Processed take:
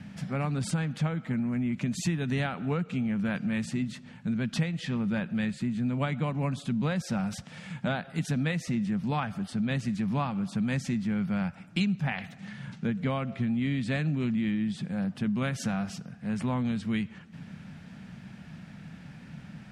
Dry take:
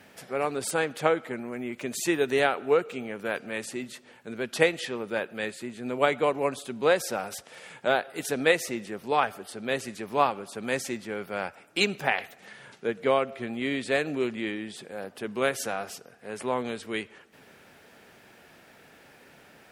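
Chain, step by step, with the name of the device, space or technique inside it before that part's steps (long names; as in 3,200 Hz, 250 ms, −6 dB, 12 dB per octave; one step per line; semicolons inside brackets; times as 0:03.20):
jukebox (low-pass filter 6,800 Hz 12 dB per octave; low shelf with overshoot 270 Hz +14 dB, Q 3; downward compressor 5 to 1, threshold −26 dBFS, peak gain reduction 14 dB)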